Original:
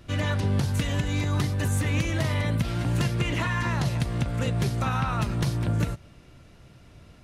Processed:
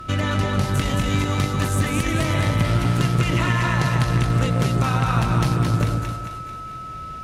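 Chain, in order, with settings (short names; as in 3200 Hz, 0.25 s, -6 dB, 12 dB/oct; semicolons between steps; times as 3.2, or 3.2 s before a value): compressor 3:1, threshold -29 dBFS, peak gain reduction 7 dB; whine 1300 Hz -43 dBFS; split-band echo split 700 Hz, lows 0.143 s, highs 0.221 s, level -3 dB; added harmonics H 2 -14 dB, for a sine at -15.5 dBFS; gain +8.5 dB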